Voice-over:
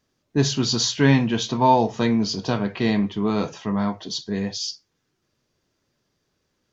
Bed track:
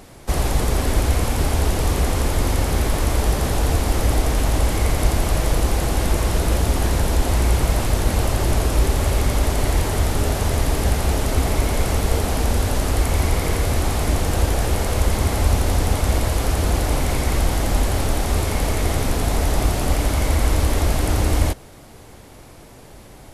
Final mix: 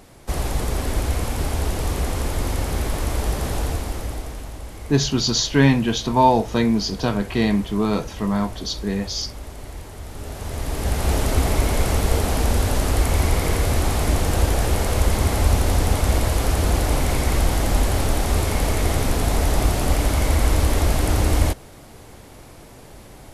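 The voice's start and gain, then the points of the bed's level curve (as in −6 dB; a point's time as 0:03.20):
4.55 s, +1.5 dB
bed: 0:03.59 −4 dB
0:04.58 −16.5 dB
0:10.01 −16.5 dB
0:11.13 0 dB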